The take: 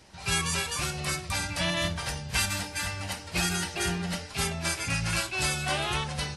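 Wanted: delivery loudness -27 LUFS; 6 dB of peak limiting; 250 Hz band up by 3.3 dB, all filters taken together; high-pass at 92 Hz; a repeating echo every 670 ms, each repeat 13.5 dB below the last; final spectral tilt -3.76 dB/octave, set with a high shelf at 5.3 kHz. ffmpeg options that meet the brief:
-af "highpass=92,equalizer=f=250:t=o:g=6.5,highshelf=f=5300:g=-5.5,alimiter=limit=0.0841:level=0:latency=1,aecho=1:1:670|1340:0.211|0.0444,volume=1.68"

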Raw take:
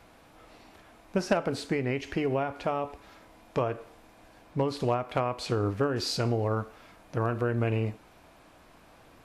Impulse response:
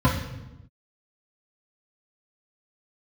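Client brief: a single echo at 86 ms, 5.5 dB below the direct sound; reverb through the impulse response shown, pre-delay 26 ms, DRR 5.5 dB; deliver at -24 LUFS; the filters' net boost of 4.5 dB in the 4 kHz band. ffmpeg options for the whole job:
-filter_complex "[0:a]equalizer=f=4000:t=o:g=5.5,aecho=1:1:86:0.531,asplit=2[s0][s1];[1:a]atrim=start_sample=2205,adelay=26[s2];[s1][s2]afir=irnorm=-1:irlink=0,volume=0.075[s3];[s0][s3]amix=inputs=2:normalize=0,volume=0.841"

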